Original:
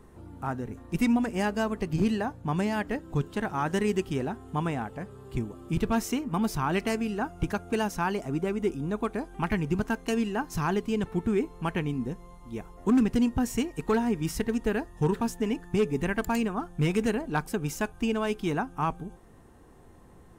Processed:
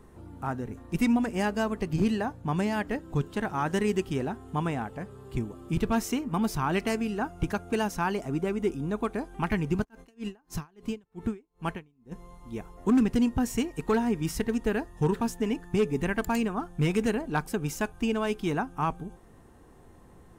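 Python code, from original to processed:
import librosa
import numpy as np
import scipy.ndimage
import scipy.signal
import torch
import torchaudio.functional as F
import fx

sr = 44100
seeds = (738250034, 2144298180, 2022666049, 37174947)

y = fx.tremolo_db(x, sr, hz=fx.line((9.83, 4.3), (12.11, 1.8)), depth_db=38, at=(9.83, 12.11), fade=0.02)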